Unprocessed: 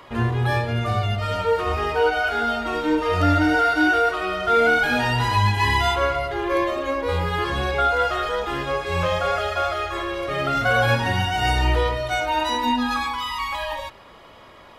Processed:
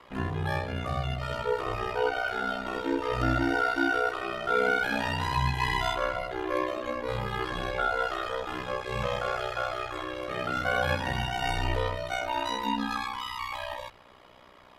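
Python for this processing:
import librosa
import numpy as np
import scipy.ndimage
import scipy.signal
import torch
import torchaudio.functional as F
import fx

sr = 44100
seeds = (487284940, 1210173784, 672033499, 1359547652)

y = x * np.sin(2.0 * np.pi * 31.0 * np.arange(len(x)) / sr)
y = fx.hum_notches(y, sr, base_hz=50, count=3)
y = F.gain(torch.from_numpy(y), -5.0).numpy()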